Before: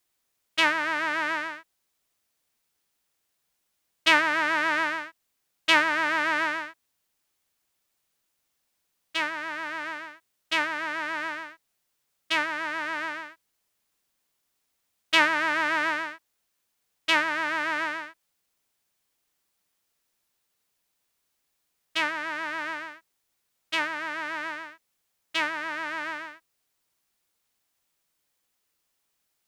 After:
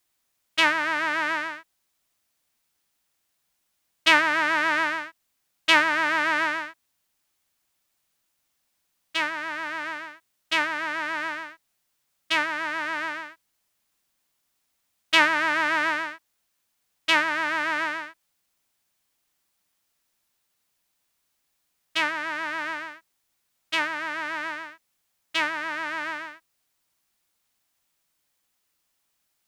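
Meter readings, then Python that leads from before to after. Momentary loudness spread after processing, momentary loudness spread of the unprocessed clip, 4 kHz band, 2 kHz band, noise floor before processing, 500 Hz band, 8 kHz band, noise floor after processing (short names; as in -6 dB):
16 LU, 16 LU, +2.0 dB, +2.0 dB, -77 dBFS, +1.0 dB, +2.0 dB, -75 dBFS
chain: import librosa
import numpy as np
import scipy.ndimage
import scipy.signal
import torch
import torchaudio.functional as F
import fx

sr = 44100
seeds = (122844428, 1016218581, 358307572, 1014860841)

y = fx.peak_eq(x, sr, hz=440.0, db=-4.5, octaves=0.45)
y = y * librosa.db_to_amplitude(2.0)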